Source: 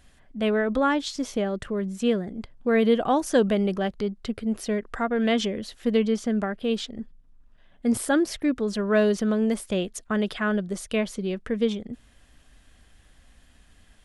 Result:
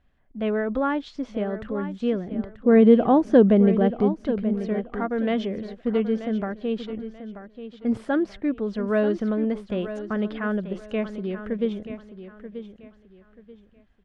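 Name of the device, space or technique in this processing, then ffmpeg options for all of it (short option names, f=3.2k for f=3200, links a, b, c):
phone in a pocket: -filter_complex "[0:a]agate=range=-8dB:threshold=-47dB:ratio=16:detection=peak,asettb=1/sr,asplit=3[a][b][c];[a]atrim=end=2.314[d];[b]atrim=start=2.31:end=4.21,asetpts=PTS-STARTPTS,afade=t=in:d=0.004:c=qsin,afade=t=out:st=1.896:d=0.004:c=qsin,equalizer=f=240:t=o:w=2.9:g=8.5[e];[c]atrim=start=4.206[f];[d][e]acrossfade=d=0.004:c1=hsin:c2=qsin[g];[g][f]acrossfade=d=0.004:c1=qsin:c2=hsin,lowpass=3.4k,highshelf=f=2.3k:g=-8,aecho=1:1:934|1868|2802:0.266|0.0745|0.0209,volume=-1dB"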